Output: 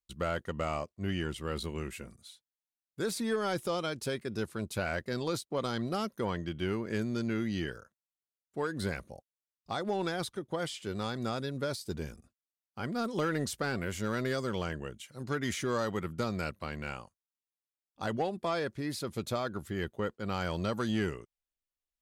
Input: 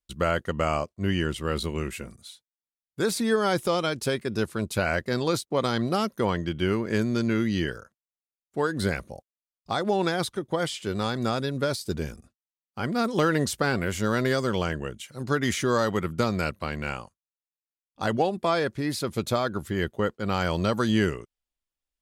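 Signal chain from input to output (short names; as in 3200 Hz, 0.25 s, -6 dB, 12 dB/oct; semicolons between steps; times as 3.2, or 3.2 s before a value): soft clip -14 dBFS, distortion -22 dB; gain -7 dB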